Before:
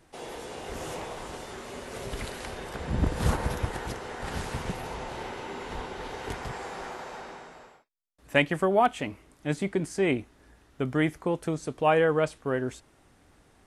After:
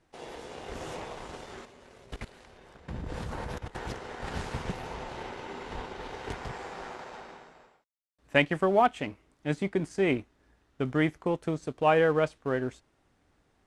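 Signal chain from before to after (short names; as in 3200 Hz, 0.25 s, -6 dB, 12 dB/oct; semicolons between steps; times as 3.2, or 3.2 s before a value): G.711 law mismatch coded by A; Bessel low-pass 6500 Hz, order 2; 1.65–3.77 level quantiser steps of 18 dB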